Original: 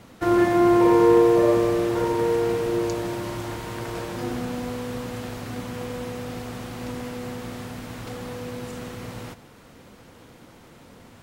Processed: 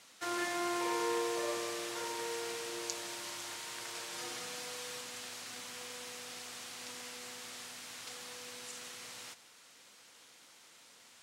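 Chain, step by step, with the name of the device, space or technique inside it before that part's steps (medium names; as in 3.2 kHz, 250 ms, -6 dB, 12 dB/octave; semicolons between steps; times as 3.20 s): 4.12–5.01 s: comb 6.4 ms, depth 65%; piezo pickup straight into a mixer (low-pass 7.6 kHz 12 dB/octave; differentiator); trim +4.5 dB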